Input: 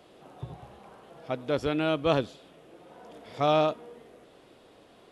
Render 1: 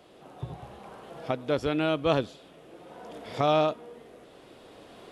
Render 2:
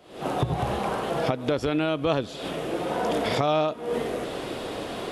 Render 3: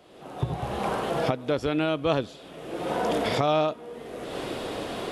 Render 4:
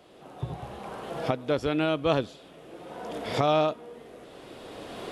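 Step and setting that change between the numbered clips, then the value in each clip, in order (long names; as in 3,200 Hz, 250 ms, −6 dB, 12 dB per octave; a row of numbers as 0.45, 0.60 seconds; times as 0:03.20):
camcorder AGC, rising by: 5.4, 87, 33, 13 dB per second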